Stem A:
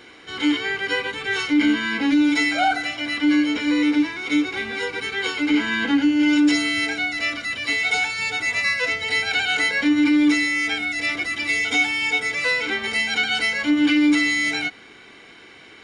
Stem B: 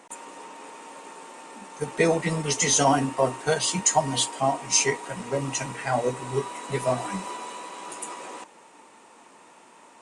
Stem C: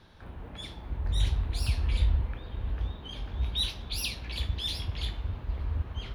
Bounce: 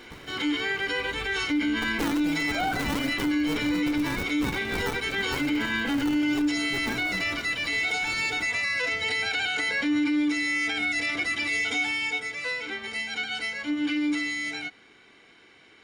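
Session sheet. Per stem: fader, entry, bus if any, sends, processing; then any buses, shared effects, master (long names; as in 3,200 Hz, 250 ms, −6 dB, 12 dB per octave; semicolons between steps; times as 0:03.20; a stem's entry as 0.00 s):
0:11.68 −1 dB → 0:12.32 −9.5 dB, 0.00 s, no send, no processing
−6.0 dB, 0.00 s, no send, parametric band 310 Hz +13.5 dB 0.6 octaves; sample-and-hold swept by an LFO 34×, swing 100% 2.5 Hz; windowed peak hold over 33 samples
−17.5 dB, 0.00 s, no send, no processing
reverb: not used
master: brickwall limiter −19 dBFS, peak gain reduction 11 dB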